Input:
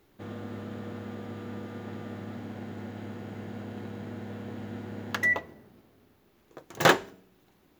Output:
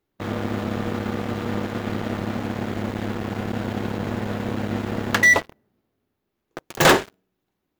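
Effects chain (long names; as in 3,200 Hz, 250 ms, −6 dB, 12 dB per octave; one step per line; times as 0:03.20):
leveller curve on the samples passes 5
level −4.5 dB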